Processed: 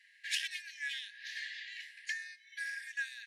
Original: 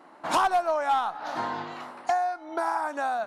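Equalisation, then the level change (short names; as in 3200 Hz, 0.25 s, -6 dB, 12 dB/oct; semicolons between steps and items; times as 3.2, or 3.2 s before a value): brick-wall FIR high-pass 1600 Hz; high shelf 6700 Hz -9 dB; +2.5 dB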